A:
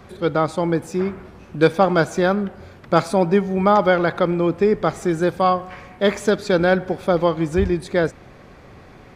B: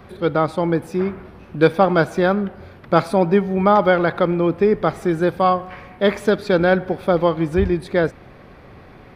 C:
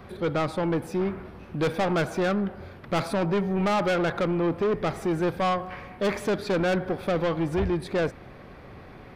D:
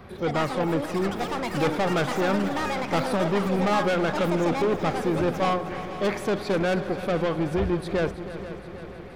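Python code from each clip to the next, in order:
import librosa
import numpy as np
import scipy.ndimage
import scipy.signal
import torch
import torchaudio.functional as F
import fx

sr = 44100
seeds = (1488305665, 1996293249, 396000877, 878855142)

y1 = fx.peak_eq(x, sr, hz=7000.0, db=-11.5, octaves=0.73)
y1 = y1 * 10.0 ** (1.0 / 20.0)
y2 = 10.0 ** (-18.5 / 20.0) * np.tanh(y1 / 10.0 ** (-18.5 / 20.0))
y2 = y2 * 10.0 ** (-2.0 / 20.0)
y3 = fx.echo_pitch(y2, sr, ms=120, semitones=7, count=3, db_per_echo=-6.0)
y3 = fx.echo_heads(y3, sr, ms=160, heads='second and third', feedback_pct=63, wet_db=-14)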